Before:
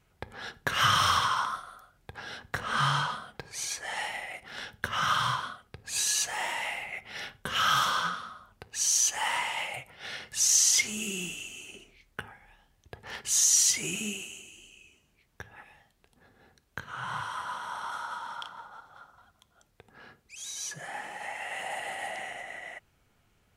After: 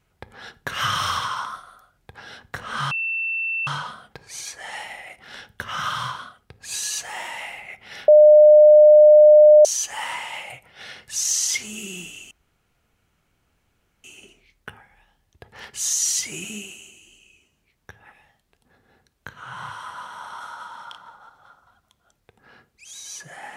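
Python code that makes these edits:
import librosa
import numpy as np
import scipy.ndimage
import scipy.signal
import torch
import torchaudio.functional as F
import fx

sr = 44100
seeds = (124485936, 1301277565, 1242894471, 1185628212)

y = fx.edit(x, sr, fx.insert_tone(at_s=2.91, length_s=0.76, hz=2680.0, db=-22.5),
    fx.bleep(start_s=7.32, length_s=1.57, hz=604.0, db=-6.5),
    fx.insert_room_tone(at_s=11.55, length_s=1.73), tone=tone)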